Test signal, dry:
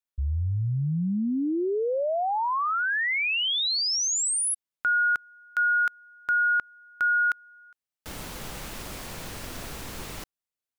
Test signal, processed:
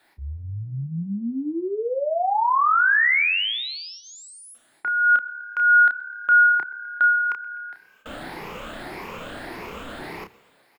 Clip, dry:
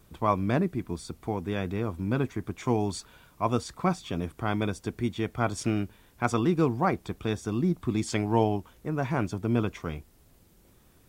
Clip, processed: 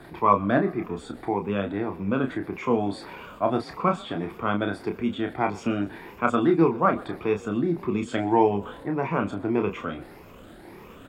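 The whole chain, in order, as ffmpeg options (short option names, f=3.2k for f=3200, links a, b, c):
-filter_complex "[0:a]afftfilt=real='re*pow(10,10/40*sin(2*PI*(0.8*log(max(b,1)*sr/1024/100)/log(2)-(1.7)*(pts-256)/sr)))':imag='im*pow(10,10/40*sin(2*PI*(0.8*log(max(b,1)*sr/1024/100)/log(2)-(1.7)*(pts-256)/sr)))':win_size=1024:overlap=0.75,areverse,acompressor=mode=upward:threshold=-31dB:ratio=2.5:attack=1.5:release=27:knee=2.83:detection=peak,areverse,acrossover=split=190 3100:gain=0.251 1 0.126[a][b][c];[a][b][c]amix=inputs=3:normalize=0,bandreject=f=5.9k:w=8.7,asplit=2[d][e];[e]adelay=30,volume=-6dB[f];[d][f]amix=inputs=2:normalize=0,asplit=2[g][h];[h]asplit=5[i][j][k][l][m];[i]adelay=126,afreqshift=36,volume=-22dB[n];[j]adelay=252,afreqshift=72,volume=-26.2dB[o];[k]adelay=378,afreqshift=108,volume=-30.3dB[p];[l]adelay=504,afreqshift=144,volume=-34.5dB[q];[m]adelay=630,afreqshift=180,volume=-38.6dB[r];[n][o][p][q][r]amix=inputs=5:normalize=0[s];[g][s]amix=inputs=2:normalize=0,volume=3dB"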